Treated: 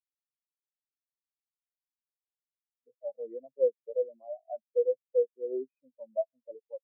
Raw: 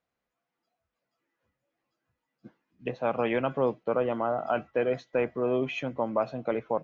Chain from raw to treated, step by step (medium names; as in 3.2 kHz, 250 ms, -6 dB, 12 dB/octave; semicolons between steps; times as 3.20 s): comb of notches 1.3 kHz; spectral contrast expander 4:1; trim -2 dB